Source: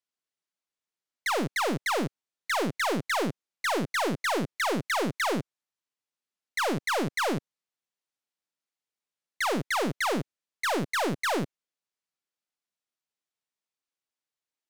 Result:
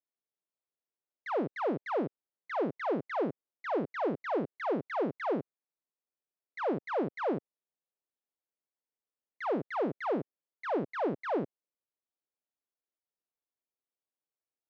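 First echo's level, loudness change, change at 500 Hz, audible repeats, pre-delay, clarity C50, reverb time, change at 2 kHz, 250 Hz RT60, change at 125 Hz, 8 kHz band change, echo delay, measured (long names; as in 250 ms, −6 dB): no echo audible, −5.0 dB, −1.0 dB, no echo audible, no reverb audible, no reverb audible, no reverb audible, −12.0 dB, no reverb audible, −8.0 dB, below −30 dB, no echo audible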